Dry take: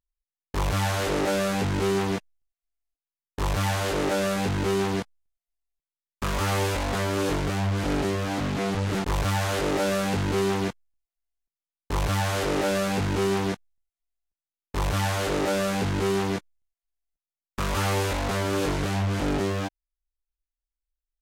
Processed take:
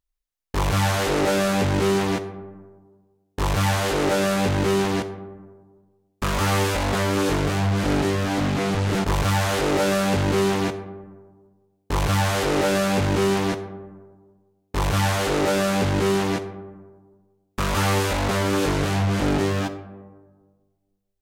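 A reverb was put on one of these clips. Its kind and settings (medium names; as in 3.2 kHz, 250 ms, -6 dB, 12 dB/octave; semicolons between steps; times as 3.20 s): algorithmic reverb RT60 1.5 s, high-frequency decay 0.35×, pre-delay 5 ms, DRR 11 dB; trim +4 dB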